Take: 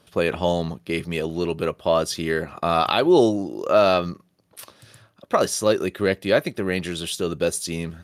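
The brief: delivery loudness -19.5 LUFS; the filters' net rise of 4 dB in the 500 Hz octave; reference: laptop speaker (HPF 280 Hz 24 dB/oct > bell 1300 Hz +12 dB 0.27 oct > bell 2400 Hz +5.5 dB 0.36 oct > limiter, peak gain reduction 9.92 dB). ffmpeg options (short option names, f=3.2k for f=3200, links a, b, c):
-af "highpass=f=280:w=0.5412,highpass=f=280:w=1.3066,equalizer=f=500:t=o:g=5,equalizer=f=1.3k:t=o:w=0.27:g=12,equalizer=f=2.4k:t=o:w=0.36:g=5.5,volume=3dB,alimiter=limit=-7.5dB:level=0:latency=1"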